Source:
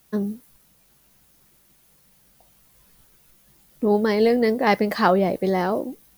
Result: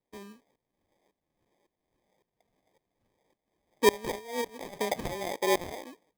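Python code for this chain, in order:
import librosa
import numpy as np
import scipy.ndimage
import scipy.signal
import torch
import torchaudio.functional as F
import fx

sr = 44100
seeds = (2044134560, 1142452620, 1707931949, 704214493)

y = fx.wiener(x, sr, points=15)
y = fx.over_compress(y, sr, threshold_db=-25.0, ratio=-0.5, at=(4.14, 4.77), fade=0.02)
y = fx.peak_eq(y, sr, hz=350.0, db=6.0, octaves=1.7)
y = fx.filter_lfo_bandpass(y, sr, shape='saw_down', hz=1.8, low_hz=440.0, high_hz=4600.0, q=2.5)
y = fx.peak_eq(y, sr, hz=76.0, db=-11.5, octaves=2.4, at=(5.41, 5.83))
y = fx.sample_hold(y, sr, seeds[0], rate_hz=1400.0, jitter_pct=0)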